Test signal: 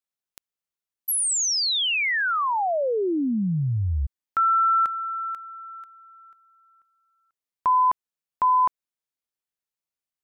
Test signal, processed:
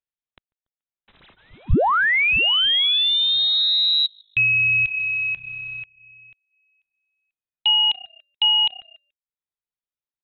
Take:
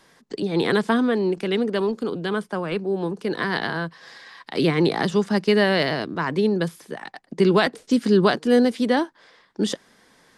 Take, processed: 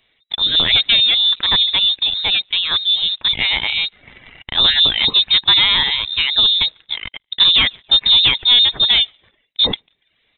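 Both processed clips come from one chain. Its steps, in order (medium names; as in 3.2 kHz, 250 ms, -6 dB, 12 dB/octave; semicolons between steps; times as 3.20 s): on a send: frequency-shifting echo 143 ms, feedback 42%, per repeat +32 Hz, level -23 dB; on the sum: waveshaping leveller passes 2; in parallel at -11 dB: bit crusher 5-bit; on the sum: reverb removal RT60 0.51 s; frequency inversion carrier 3.9 kHz; bass shelf 160 Hz +7 dB; trim -1 dB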